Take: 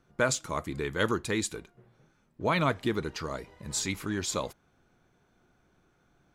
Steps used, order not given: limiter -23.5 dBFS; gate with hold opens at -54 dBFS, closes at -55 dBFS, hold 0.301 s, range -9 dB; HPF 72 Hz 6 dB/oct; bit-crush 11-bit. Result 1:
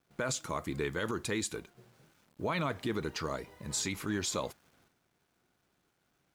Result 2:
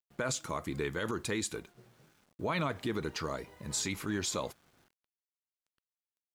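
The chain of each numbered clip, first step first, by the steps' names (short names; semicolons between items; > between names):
limiter > bit-crush > HPF > gate with hold; HPF > gate with hold > bit-crush > limiter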